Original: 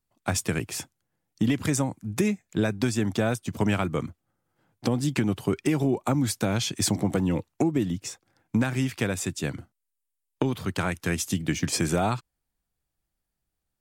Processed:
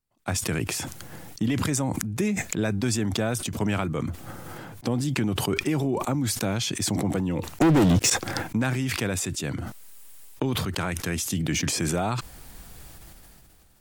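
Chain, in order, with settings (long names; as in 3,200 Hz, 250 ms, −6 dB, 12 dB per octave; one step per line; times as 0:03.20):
0:07.61–0:08.10: leveller curve on the samples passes 5
level that may fall only so fast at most 20 dB per second
level −2.5 dB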